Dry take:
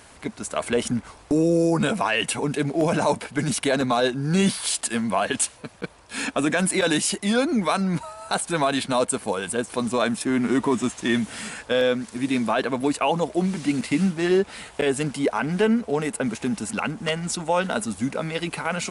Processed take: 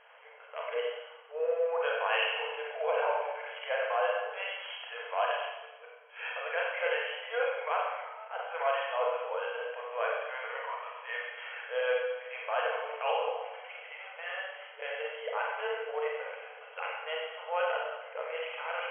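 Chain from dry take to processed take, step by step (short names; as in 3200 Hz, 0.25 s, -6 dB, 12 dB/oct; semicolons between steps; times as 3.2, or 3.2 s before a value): transient shaper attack -11 dB, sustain -7 dB; Schroeder reverb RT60 1.1 s, combs from 31 ms, DRR -3 dB; FFT band-pass 440–3300 Hz; gain -8 dB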